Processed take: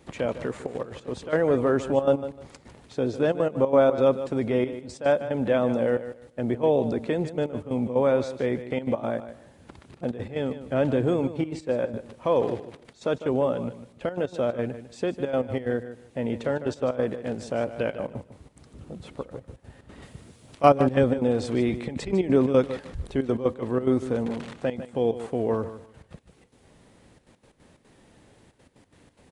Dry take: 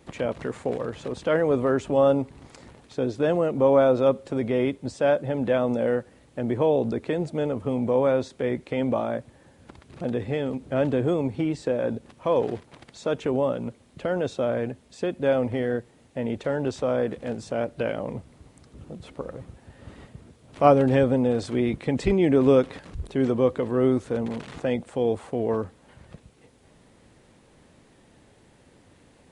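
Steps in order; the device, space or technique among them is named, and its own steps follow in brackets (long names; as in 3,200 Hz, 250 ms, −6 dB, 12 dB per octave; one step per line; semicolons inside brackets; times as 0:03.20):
0:20.02–0:20.69: high-shelf EQ 2,700 Hz +8.5 dB
trance gate with a delay (gate pattern "xxxxxxxx.x.x.xx." 181 BPM −12 dB; repeating echo 151 ms, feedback 22%, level −12.5 dB)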